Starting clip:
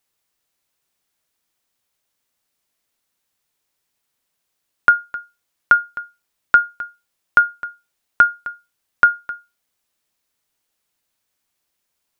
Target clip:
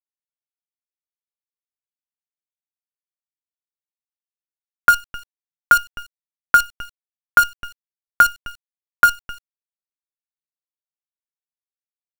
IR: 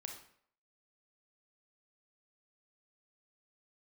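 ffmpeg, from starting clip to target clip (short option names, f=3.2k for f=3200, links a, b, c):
-filter_complex "[0:a]asettb=1/sr,asplit=3[a][b][c];[a]atrim=end=6.824[d];[b]atrim=start=6.82:end=9.18,asetpts=PTS-STARTPTS,afade=t=in:d=0.004:c=qsin,afade=t=out:st=2.356:d=0.004:c=qsin,bandreject=f=390:w=12[e];[c]atrim=start=9.176[f];[d][e]acrossfade=d=0.004:c1=hsin:c2=qsin[g];[g][f]acrossfade=d=0.004:c1=qsin:c2=hsin,acrusher=bits=4:dc=4:mix=0:aa=0.000001"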